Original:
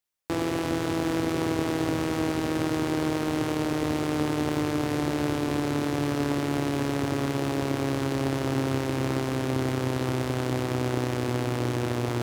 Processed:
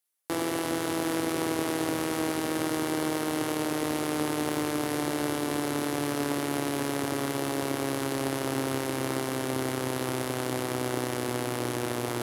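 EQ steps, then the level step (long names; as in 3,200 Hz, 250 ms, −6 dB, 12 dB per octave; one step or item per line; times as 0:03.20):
high-pass filter 300 Hz 6 dB per octave
parametric band 11,000 Hz +11 dB 0.62 octaves
notch filter 2,500 Hz, Q 27
0.0 dB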